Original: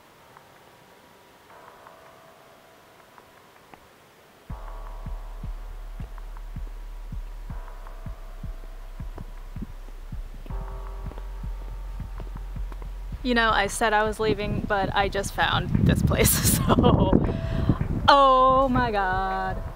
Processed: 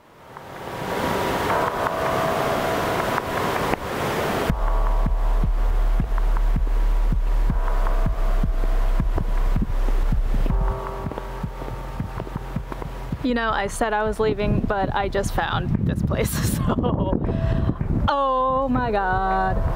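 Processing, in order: recorder AGC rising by 28 dB/s; high shelf 2100 Hz -8.5 dB; compressor, threshold -19 dBFS, peak gain reduction 8 dB; 10.71–13.3 HPF 100 Hz 12 dB/oct; gain +2 dB

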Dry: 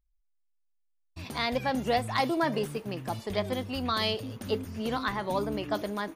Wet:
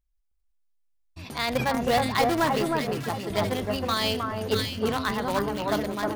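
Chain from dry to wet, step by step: in parallel at -8 dB: bit-crush 4-bit; on the sum: echo with dull and thin repeats by turns 0.314 s, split 1600 Hz, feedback 52%, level -2.5 dB; sustainer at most 73 dB/s

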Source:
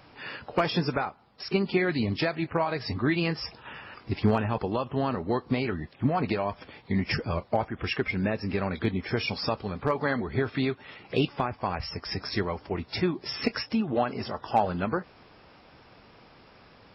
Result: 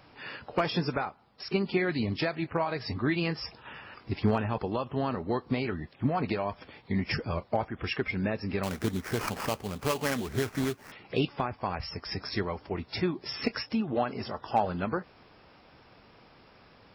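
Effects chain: 8.63–10.92 sample-rate reducer 3700 Hz, jitter 20%; gain -2.5 dB

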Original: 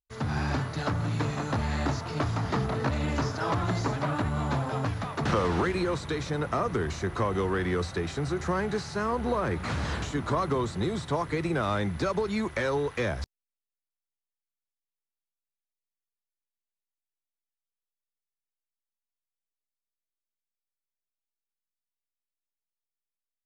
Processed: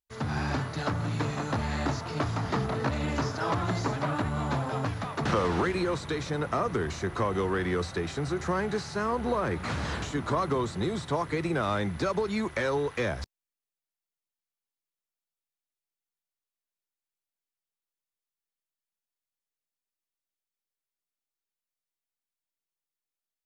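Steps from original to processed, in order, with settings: low shelf 80 Hz -5.5 dB

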